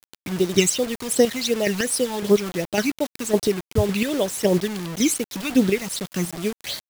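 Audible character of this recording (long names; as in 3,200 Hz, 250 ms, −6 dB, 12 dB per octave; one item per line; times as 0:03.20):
chopped level 1.8 Hz, depth 60%, duty 25%
phaser sweep stages 12, 2.7 Hz, lowest notch 530–2,500 Hz
a quantiser's noise floor 6 bits, dither none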